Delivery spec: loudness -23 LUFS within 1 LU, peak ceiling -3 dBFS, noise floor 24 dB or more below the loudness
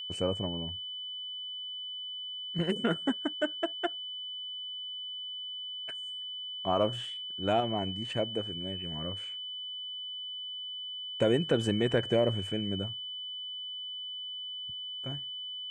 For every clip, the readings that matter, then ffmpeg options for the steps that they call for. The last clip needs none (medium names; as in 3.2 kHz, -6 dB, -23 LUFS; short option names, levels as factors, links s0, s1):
steady tone 3 kHz; tone level -37 dBFS; loudness -33.5 LUFS; peak level -14.5 dBFS; loudness target -23.0 LUFS
-> -af "bandreject=f=3000:w=30"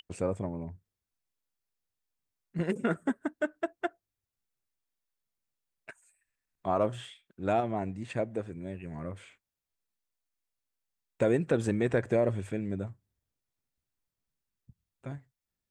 steady tone not found; loudness -32.5 LUFS; peak level -15.0 dBFS; loudness target -23.0 LUFS
-> -af "volume=2.99"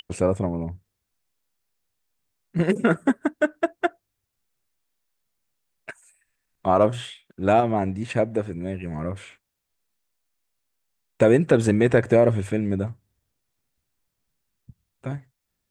loudness -23.0 LUFS; peak level -5.5 dBFS; noise floor -80 dBFS